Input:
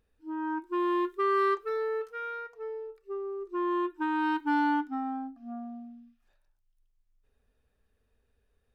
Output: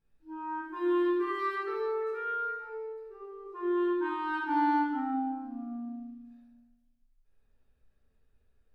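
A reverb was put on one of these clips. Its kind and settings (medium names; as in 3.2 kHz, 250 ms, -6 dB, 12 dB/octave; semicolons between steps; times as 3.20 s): simulated room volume 790 m³, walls mixed, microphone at 8.2 m; trim -16 dB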